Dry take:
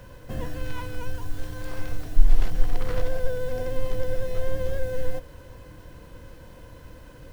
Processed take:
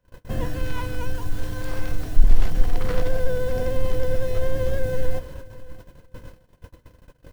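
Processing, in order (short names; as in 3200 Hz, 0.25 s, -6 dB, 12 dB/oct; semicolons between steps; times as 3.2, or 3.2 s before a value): octaver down 2 oct, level -2 dB; gate -40 dBFS, range -32 dB; in parallel at -6 dB: soft clip -17.5 dBFS, distortion -7 dB; on the sum: feedback echo 0.618 s, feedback 19%, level -19.5 dB; gain +1 dB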